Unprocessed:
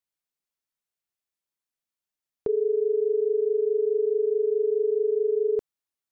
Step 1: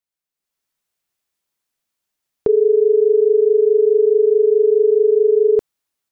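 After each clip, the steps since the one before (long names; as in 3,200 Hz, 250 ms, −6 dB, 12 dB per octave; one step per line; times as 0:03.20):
automatic gain control gain up to 10.5 dB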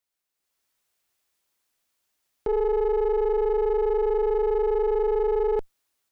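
one-sided soft clipper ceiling −18.5 dBFS
parametric band 160 Hz −5.5 dB 1.1 octaves
brickwall limiter −20.5 dBFS, peak gain reduction 12 dB
level +3.5 dB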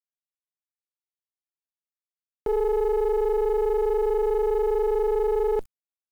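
bit reduction 9 bits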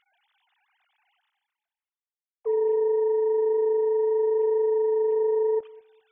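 three sine waves on the formant tracks
reversed playback
upward compression, threshold −39 dBFS
reversed playback
feedback echo with a low-pass in the loop 203 ms, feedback 24%, level −22.5 dB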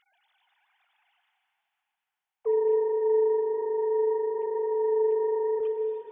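dense smooth reverb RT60 4.1 s, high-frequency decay 0.85×, pre-delay 115 ms, DRR 5 dB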